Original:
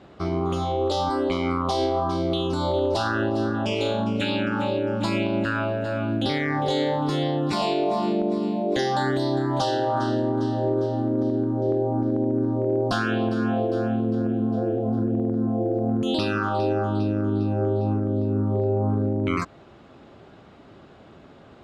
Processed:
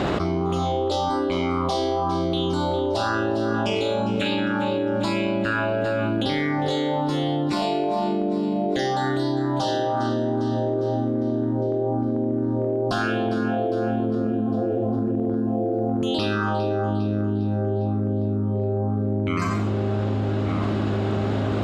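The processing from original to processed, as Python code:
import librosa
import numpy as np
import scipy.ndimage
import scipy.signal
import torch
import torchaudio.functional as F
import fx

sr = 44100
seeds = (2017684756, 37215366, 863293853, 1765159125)

p1 = x + fx.echo_wet_lowpass(x, sr, ms=1191, feedback_pct=55, hz=1400.0, wet_db=-20.5, dry=0)
p2 = fx.rev_schroeder(p1, sr, rt60_s=0.51, comb_ms=30, drr_db=7.0)
p3 = fx.env_flatten(p2, sr, amount_pct=100)
y = p3 * librosa.db_to_amplitude(-4.5)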